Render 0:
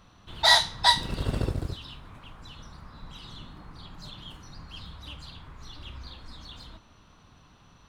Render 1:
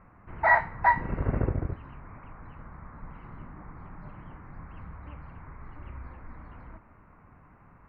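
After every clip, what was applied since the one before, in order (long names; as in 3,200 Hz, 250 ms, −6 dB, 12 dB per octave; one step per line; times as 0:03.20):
elliptic low-pass filter 2,200 Hz, stop band 40 dB
level +2 dB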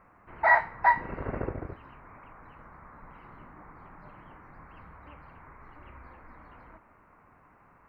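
bass and treble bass −10 dB, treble +5 dB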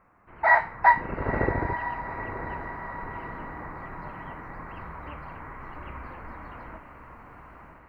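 automatic gain control gain up to 12 dB
feedback delay with all-pass diffusion 950 ms, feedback 54%, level −10.5 dB
level −3 dB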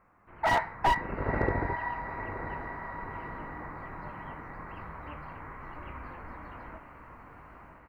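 double-tracking delay 20 ms −11 dB
slew-rate limiting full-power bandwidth 130 Hz
level −3 dB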